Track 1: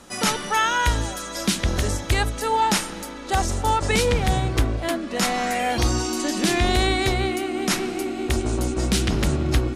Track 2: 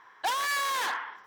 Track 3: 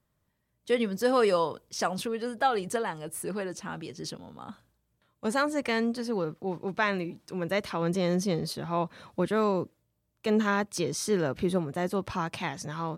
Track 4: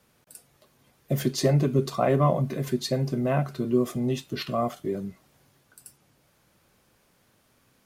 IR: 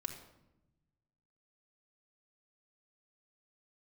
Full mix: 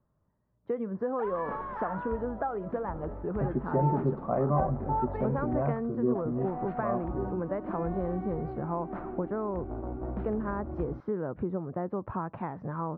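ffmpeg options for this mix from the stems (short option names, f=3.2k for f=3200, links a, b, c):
-filter_complex "[0:a]equalizer=f=710:w=1.5:g=7.5,aeval=exprs='val(0)+0.0158*(sin(2*PI*50*n/s)+sin(2*PI*2*50*n/s)/2+sin(2*PI*3*50*n/s)/3+sin(2*PI*4*50*n/s)/4+sin(2*PI*5*50*n/s)/5)':c=same,adelay=1250,volume=-16.5dB,asplit=3[a][b][c];[a]atrim=end=5.63,asetpts=PTS-STARTPTS,afade=t=out:st=5.626:d=0.004:c=hsin[d];[b]atrim=start=5.63:end=6.15,asetpts=PTS-STARTPTS,volume=0[e];[c]atrim=start=6.15,asetpts=PTS-STARTPTS,afade=t=in:d=0.004:c=hsin[f];[d][e][f]concat=n=3:v=0:a=1,asplit=2[g][h];[h]volume=-6dB[i];[1:a]tiltshelf=f=790:g=-5.5,adelay=950,volume=-9.5dB[j];[2:a]acompressor=threshold=-31dB:ratio=6,volume=2.5dB,asplit=2[k][l];[3:a]adelay=2300,volume=-5.5dB[m];[l]apad=whole_len=485187[n];[g][n]sidechaincompress=threshold=-40dB:ratio=8:attack=16:release=147[o];[4:a]atrim=start_sample=2205[p];[i][p]afir=irnorm=-1:irlink=0[q];[o][j][k][m][q]amix=inputs=5:normalize=0,lowpass=f=1.3k:w=0.5412,lowpass=f=1.3k:w=1.3066"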